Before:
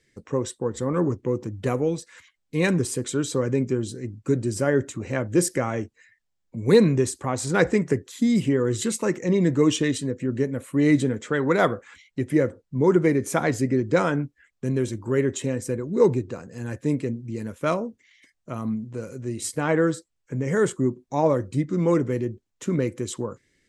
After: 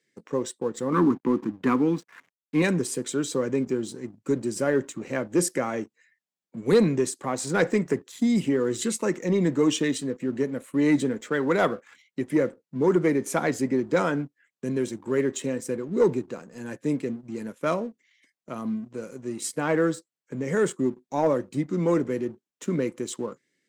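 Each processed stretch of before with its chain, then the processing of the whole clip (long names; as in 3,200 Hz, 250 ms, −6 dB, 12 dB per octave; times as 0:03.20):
0:00.92–0:02.62: drawn EQ curve 110 Hz 0 dB, 180 Hz +4 dB, 270 Hz +11 dB, 620 Hz −10 dB, 1,000 Hz +11 dB, 9,200 Hz −8 dB + slack as between gear wheels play −41.5 dBFS
whole clip: high-pass filter 160 Hz 24 dB per octave; leveller curve on the samples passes 1; level −5 dB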